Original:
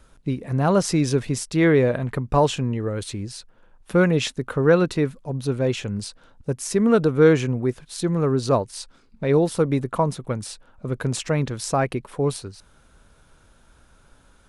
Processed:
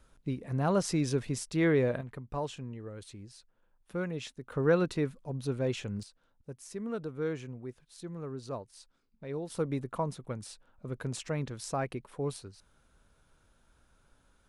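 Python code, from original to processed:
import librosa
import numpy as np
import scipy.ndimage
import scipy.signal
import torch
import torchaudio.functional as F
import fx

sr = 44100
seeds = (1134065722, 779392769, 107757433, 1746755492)

y = fx.gain(x, sr, db=fx.steps((0.0, -9.0), (2.01, -17.0), (4.52, -9.0), (6.03, -19.0), (9.5, -11.5)))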